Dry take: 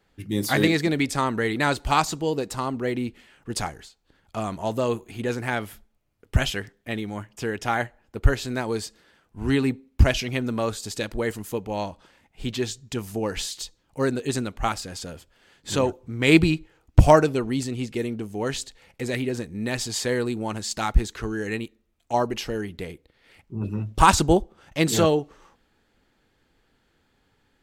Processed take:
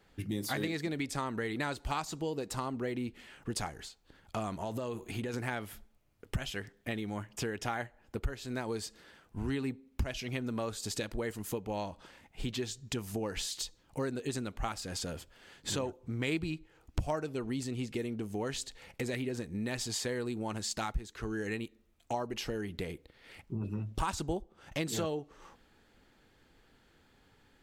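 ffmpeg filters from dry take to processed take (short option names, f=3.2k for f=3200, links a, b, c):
-filter_complex "[0:a]asettb=1/sr,asplit=3[a][b][c];[a]atrim=end=4.614[d];[b]atrim=start=4.61:end=5.34,asetpts=PTS-STARTPTS,afade=t=in:d=0.004:c=qsin,afade=t=out:st=0.726:d=0.004:c=qsin,acompressor=threshold=-29dB:ratio=6:attack=3.2:release=140:knee=1:detection=peak[e];[c]atrim=start=5.336[f];[d][e]acrossfade=d=0.004:c1=hsin:c2=qsin[g];[g][f]acrossfade=d=0.004:c1=qsin:c2=hsin,acompressor=threshold=-36dB:ratio=4,volume=1.5dB"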